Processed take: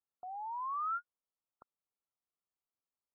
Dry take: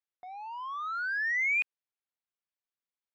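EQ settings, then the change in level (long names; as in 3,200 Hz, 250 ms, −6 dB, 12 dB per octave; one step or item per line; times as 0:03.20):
linear-phase brick-wall low-pass 1,400 Hz
0.0 dB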